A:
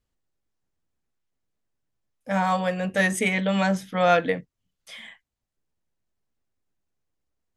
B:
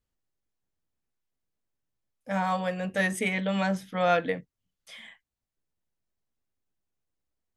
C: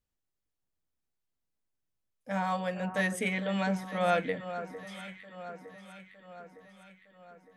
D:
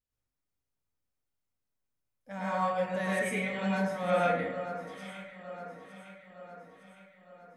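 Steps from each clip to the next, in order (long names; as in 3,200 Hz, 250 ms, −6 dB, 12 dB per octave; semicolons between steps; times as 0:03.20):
dynamic equaliser 6,900 Hz, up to −4 dB, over −47 dBFS, Q 2.4; level −4.5 dB
delay that swaps between a low-pass and a high-pass 455 ms, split 1,600 Hz, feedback 73%, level −10.5 dB; level −3.5 dB
dense smooth reverb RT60 0.77 s, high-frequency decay 0.5×, pre-delay 90 ms, DRR −8 dB; level −8.5 dB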